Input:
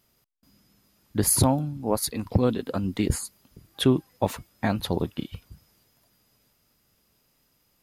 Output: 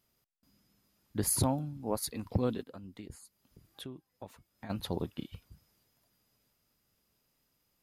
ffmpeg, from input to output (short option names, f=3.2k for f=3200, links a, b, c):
-filter_complex "[0:a]asplit=3[a][b][c];[a]afade=t=out:st=2.62:d=0.02[d];[b]acompressor=threshold=-42dB:ratio=2.5,afade=t=in:st=2.62:d=0.02,afade=t=out:st=4.69:d=0.02[e];[c]afade=t=in:st=4.69:d=0.02[f];[d][e][f]amix=inputs=3:normalize=0,volume=-8.5dB"